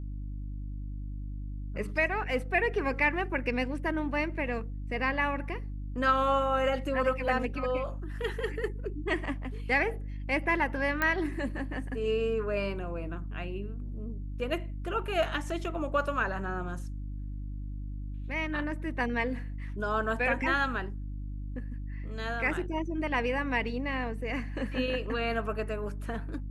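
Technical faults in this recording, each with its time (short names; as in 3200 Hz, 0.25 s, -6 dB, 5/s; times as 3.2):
hum 50 Hz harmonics 6 -37 dBFS
11.02 pop -14 dBFS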